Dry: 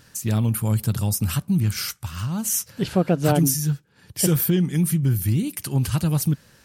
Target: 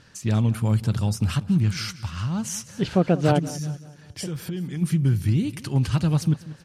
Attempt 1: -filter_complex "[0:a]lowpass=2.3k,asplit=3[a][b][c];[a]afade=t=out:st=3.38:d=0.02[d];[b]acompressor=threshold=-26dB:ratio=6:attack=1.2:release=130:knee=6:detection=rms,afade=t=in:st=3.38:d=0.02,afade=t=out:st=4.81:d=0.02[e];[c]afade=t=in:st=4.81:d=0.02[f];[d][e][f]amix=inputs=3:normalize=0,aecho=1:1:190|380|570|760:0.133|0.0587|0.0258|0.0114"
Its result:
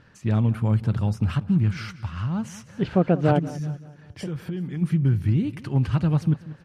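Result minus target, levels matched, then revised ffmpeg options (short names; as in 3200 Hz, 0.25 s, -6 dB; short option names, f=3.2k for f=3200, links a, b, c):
4000 Hz band -8.0 dB
-filter_complex "[0:a]lowpass=5.4k,asplit=3[a][b][c];[a]afade=t=out:st=3.38:d=0.02[d];[b]acompressor=threshold=-26dB:ratio=6:attack=1.2:release=130:knee=6:detection=rms,afade=t=in:st=3.38:d=0.02,afade=t=out:st=4.81:d=0.02[e];[c]afade=t=in:st=4.81:d=0.02[f];[d][e][f]amix=inputs=3:normalize=0,aecho=1:1:190|380|570|760:0.133|0.0587|0.0258|0.0114"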